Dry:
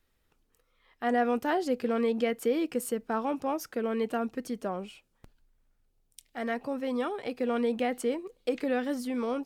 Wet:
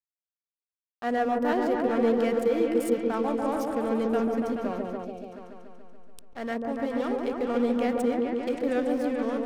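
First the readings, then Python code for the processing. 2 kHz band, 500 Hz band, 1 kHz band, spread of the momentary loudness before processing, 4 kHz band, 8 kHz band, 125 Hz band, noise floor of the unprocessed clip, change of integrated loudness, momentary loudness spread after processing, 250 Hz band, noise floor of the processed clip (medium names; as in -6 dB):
+1.0 dB, +4.0 dB, +2.5 dB, 7 LU, -0.5 dB, -3.0 dB, +5.0 dB, -73 dBFS, +3.5 dB, 10 LU, +4.5 dB, under -85 dBFS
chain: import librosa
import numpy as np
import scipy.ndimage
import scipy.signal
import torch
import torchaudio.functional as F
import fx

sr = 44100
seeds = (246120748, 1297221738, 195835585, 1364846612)

y = fx.backlash(x, sr, play_db=-36.0)
y = fx.echo_opening(y, sr, ms=143, hz=750, octaves=1, feedback_pct=70, wet_db=0)
y = fx.spec_box(y, sr, start_s=5.04, length_s=0.28, low_hz=850.0, high_hz=2200.0, gain_db=-13)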